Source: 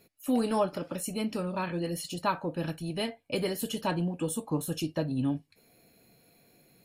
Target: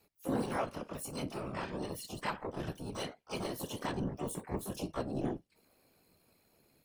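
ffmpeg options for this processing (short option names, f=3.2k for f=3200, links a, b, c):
-filter_complex "[0:a]aeval=exprs='val(0)*sin(2*PI*36*n/s)':c=same,afftfilt=real='hypot(re,im)*cos(2*PI*random(0))':imag='hypot(re,im)*sin(2*PI*random(1))':win_size=512:overlap=0.75,asplit=3[a][b][c];[b]asetrate=52444,aresample=44100,atempo=0.840896,volume=-13dB[d];[c]asetrate=88200,aresample=44100,atempo=0.5,volume=-6dB[e];[a][d][e]amix=inputs=3:normalize=0,volume=1dB"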